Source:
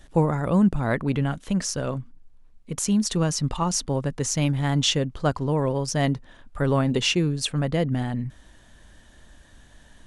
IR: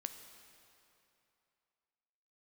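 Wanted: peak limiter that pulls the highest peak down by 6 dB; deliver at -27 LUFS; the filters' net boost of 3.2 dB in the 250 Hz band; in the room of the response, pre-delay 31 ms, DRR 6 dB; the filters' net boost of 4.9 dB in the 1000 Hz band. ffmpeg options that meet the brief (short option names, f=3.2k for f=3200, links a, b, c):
-filter_complex "[0:a]equalizer=f=250:t=o:g=4,equalizer=f=1k:t=o:g=6,alimiter=limit=-13dB:level=0:latency=1,asplit=2[a][b];[1:a]atrim=start_sample=2205,adelay=31[c];[b][c]afir=irnorm=-1:irlink=0,volume=-3.5dB[d];[a][d]amix=inputs=2:normalize=0,volume=-4.5dB"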